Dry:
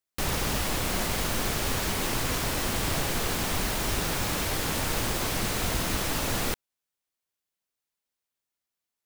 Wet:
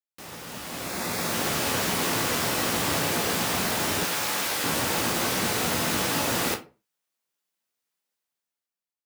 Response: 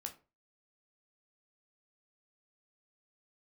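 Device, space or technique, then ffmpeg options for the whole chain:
far laptop microphone: -filter_complex "[0:a]asettb=1/sr,asplit=3[link_01][link_02][link_03];[link_01]atrim=end=0.844[link_04];[link_02]atrim=start=0.84:end=1.32,asetpts=PTS-STARTPTS,afade=type=in:duration=0.004:curve=qsin,afade=type=out:start_time=0.476:duration=0.004:curve=qsin,bandreject=frequency=3000:width=6[link_05];[link_03]atrim=start=1.316[link_06];[link_04][link_05]acrossfade=duration=0.004:curve1=hsin:curve2=qsin[link_07];[link_07][link_06]acrossfade=duration=0.004:curve1=qsin:curve2=hsin[link_08];[1:a]atrim=start_sample=2205[link_09];[link_08][link_09]afir=irnorm=-1:irlink=0,highpass=150,dynaudnorm=framelen=220:gausssize=9:maxgain=16dB,asettb=1/sr,asplit=3[link_10][link_11][link_12];[link_10]atrim=end=4.054[link_13];[link_11]atrim=start=4.05:end=4.64,asetpts=PTS-STARTPTS,afade=type=in:duration=0.004:curve=qsin,afade=type=out:start_time=0.586:duration=0.004:curve=qsin,lowshelf=frequency=430:gain=-11[link_14];[link_12]atrim=start=4.636[link_15];[link_13][link_14]acrossfade=duration=0.004:curve1=hsin:curve2=qsin[link_16];[link_16][link_15]acrossfade=duration=0.004:curve1=qsin:curve2=hsin,volume=-8.5dB"

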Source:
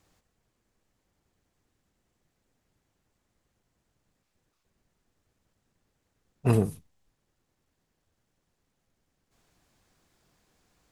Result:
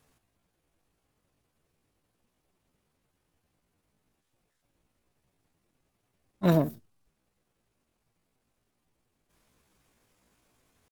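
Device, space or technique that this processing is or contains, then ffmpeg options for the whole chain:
chipmunk voice: -af "asetrate=64194,aresample=44100,atempo=0.686977"

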